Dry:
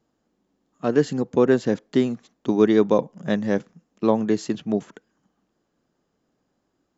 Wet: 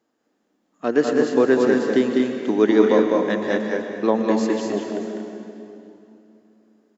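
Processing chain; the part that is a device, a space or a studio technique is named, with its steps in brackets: stadium PA (high-pass 180 Hz 6 dB/octave; peaking EQ 1.8 kHz +4 dB 0.73 oct; loudspeakers at several distances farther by 69 m -4 dB, 80 m -7 dB; reverberation RT60 2.9 s, pre-delay 102 ms, DRR 5.5 dB); resonant low shelf 200 Hz -6.5 dB, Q 1.5

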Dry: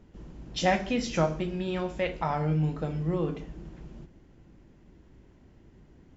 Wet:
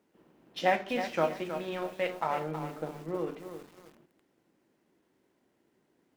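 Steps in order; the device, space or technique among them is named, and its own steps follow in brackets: phone line with mismatched companding (band-pass 320–3400 Hz; companding laws mixed up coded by A); 2.43–3.27 s: treble shelf 2.4 kHz -10 dB; bit-crushed delay 320 ms, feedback 35%, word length 8-bit, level -9 dB

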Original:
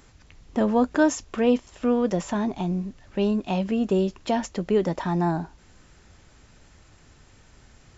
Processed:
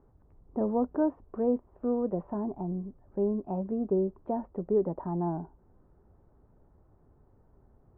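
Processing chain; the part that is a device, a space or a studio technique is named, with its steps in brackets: under water (low-pass 1 kHz 24 dB/octave; peaking EQ 400 Hz +5 dB 0.32 oct); trim -7.5 dB

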